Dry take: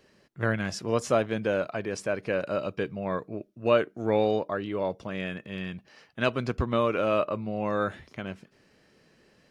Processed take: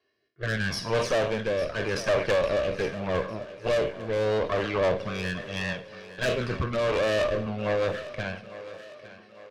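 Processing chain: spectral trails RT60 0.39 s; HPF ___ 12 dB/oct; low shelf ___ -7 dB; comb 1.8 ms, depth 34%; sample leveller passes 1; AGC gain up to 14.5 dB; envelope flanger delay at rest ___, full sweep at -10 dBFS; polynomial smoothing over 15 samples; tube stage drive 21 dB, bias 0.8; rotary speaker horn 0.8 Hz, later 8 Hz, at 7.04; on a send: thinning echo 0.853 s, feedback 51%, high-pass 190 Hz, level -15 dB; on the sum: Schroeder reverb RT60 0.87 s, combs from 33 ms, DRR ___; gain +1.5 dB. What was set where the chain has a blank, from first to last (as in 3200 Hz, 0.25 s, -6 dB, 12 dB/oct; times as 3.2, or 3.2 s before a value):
100 Hz, 450 Hz, 2.8 ms, 16.5 dB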